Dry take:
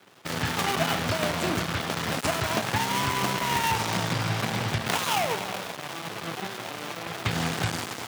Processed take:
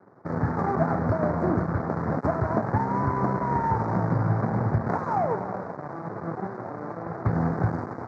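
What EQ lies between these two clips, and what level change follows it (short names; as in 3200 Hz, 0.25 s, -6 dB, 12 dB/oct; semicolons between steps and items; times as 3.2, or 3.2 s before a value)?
Butterworth band-stop 3000 Hz, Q 0.74; tape spacing loss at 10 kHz 43 dB; high shelf 3400 Hz -7.5 dB; +6.0 dB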